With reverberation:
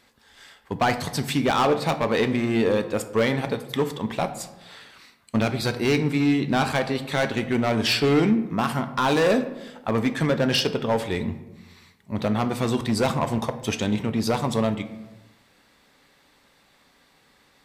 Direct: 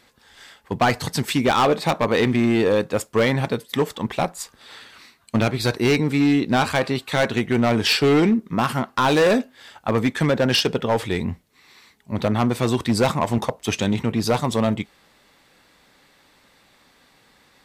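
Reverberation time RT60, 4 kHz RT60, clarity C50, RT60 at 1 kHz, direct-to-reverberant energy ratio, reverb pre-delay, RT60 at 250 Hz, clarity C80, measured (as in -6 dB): 1.1 s, 0.60 s, 12.5 dB, 1.0 s, 9.5 dB, 4 ms, 1.3 s, 14.5 dB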